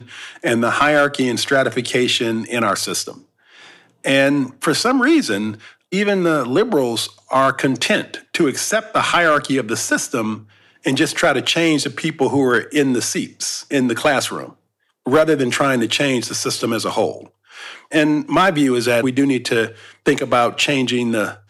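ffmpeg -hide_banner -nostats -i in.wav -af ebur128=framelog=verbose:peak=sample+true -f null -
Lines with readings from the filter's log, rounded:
Integrated loudness:
  I:         -17.5 LUFS
  Threshold: -28.0 LUFS
Loudness range:
  LRA:         1.7 LU
  Threshold: -38.1 LUFS
  LRA low:   -18.9 LUFS
  LRA high:  -17.2 LUFS
Sample peak:
  Peak:       -3.3 dBFS
True peak:
  Peak:       -3.3 dBFS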